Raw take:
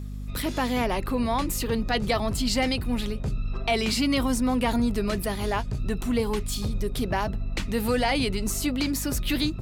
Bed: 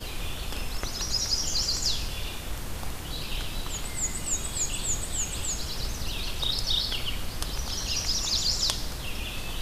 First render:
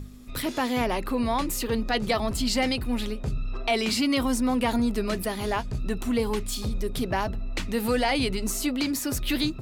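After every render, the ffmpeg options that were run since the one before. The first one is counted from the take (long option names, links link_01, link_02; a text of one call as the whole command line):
ffmpeg -i in.wav -af "bandreject=frequency=50:width_type=h:width=4,bandreject=frequency=100:width_type=h:width=4,bandreject=frequency=150:width_type=h:width=4,bandreject=frequency=200:width_type=h:width=4" out.wav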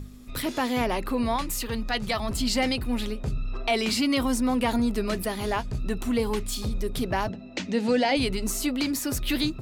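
ffmpeg -i in.wav -filter_complex "[0:a]asettb=1/sr,asplit=3[link_01][link_02][link_03];[link_01]atrim=end=1.364[link_04];[link_02]atrim=start=1.36:end=2.29,asetpts=PTS-STARTPTS,afade=type=in:duration=0.004:curve=qsin,afade=type=out:start_time=0.926:duration=0.004:curve=qsin,equalizer=frequency=380:width=0.9:gain=-7.5[link_05];[link_03]atrim=start=2.286[link_06];[link_04][link_05]acrossfade=duration=0.004:curve1=hsin:curve2=qsin[link_07];[link_07][link_06]acrossfade=duration=0.004:curve1=qsin:curve2=hsin,asettb=1/sr,asplit=3[link_08][link_09][link_10];[link_08]atrim=end=7.294[link_11];[link_09]atrim=start=7.29:end=8.17,asetpts=PTS-STARTPTS,afade=type=in:duration=0.004:curve=qsin,afade=type=out:start_time=0.876:duration=0.004:curve=qsin,highpass=180,equalizer=frequency=180:width_type=q:width=4:gain=7,equalizer=frequency=270:width_type=q:width=4:gain=5,equalizer=frequency=580:width_type=q:width=4:gain=5,equalizer=frequency=1200:width_type=q:width=4:gain=-8,equalizer=frequency=6400:width_type=q:width=4:gain=3,lowpass=frequency=7000:width=0.5412,lowpass=frequency=7000:width=1.3066[link_12];[link_10]atrim=start=8.166[link_13];[link_11][link_12]acrossfade=duration=0.004:curve1=hsin:curve2=qsin[link_14];[link_14][link_13]acrossfade=duration=0.004:curve1=qsin:curve2=hsin" out.wav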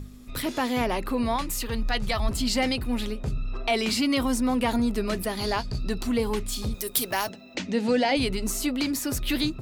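ffmpeg -i in.wav -filter_complex "[0:a]asettb=1/sr,asplit=3[link_01][link_02][link_03];[link_01]atrim=end=1.544[link_04];[link_02]atrim=start=1.54:end=2.29,asetpts=PTS-STARTPTS,afade=type=in:duration=0.004:curve=qsin,afade=type=out:start_time=0.746:duration=0.004:curve=qsin,asubboost=boost=11:cutoff=110[link_05];[link_03]atrim=start=2.286[link_06];[link_04][link_05]acrossfade=duration=0.004:curve1=hsin:curve2=qsin[link_07];[link_07][link_06]acrossfade=duration=0.004:curve1=qsin:curve2=hsin,asettb=1/sr,asplit=3[link_08][link_09][link_10];[link_08]atrim=end=5.374[link_11];[link_09]atrim=start=5.37:end=6.07,asetpts=PTS-STARTPTS,afade=type=in:duration=0.004:curve=qsin,afade=type=out:start_time=0.696:duration=0.004:curve=qsin,equalizer=frequency=4600:width_type=o:width=0.35:gain=14[link_12];[link_10]atrim=start=6.066[link_13];[link_11][link_12]acrossfade=duration=0.004:curve1=hsin:curve2=qsin[link_14];[link_14][link_13]acrossfade=duration=0.004:curve1=qsin:curve2=hsin,asettb=1/sr,asplit=3[link_15][link_16][link_17];[link_15]atrim=end=6.744[link_18];[link_16]atrim=start=6.74:end=7.55,asetpts=PTS-STARTPTS,afade=type=in:duration=0.004:curve=qsin,afade=type=out:start_time=0.806:duration=0.004:curve=qsin,aemphasis=mode=production:type=riaa[link_19];[link_17]atrim=start=7.546[link_20];[link_18][link_19]acrossfade=duration=0.004:curve1=hsin:curve2=qsin[link_21];[link_21][link_20]acrossfade=duration=0.004:curve1=qsin:curve2=hsin" out.wav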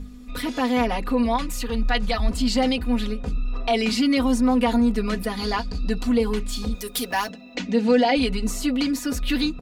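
ffmpeg -i in.wav -af "highshelf=frequency=9000:gain=-11.5,aecho=1:1:4.1:0.9" out.wav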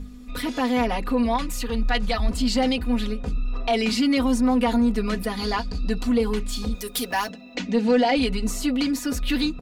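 ffmpeg -i in.wav -af "asoftclip=type=tanh:threshold=-9.5dB" out.wav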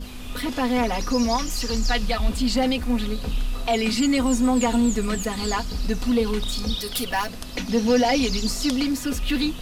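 ffmpeg -i in.wav -i bed.wav -filter_complex "[1:a]volume=-4.5dB[link_01];[0:a][link_01]amix=inputs=2:normalize=0" out.wav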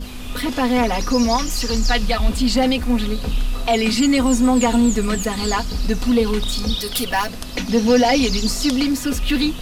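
ffmpeg -i in.wav -af "volume=4.5dB,alimiter=limit=-3dB:level=0:latency=1" out.wav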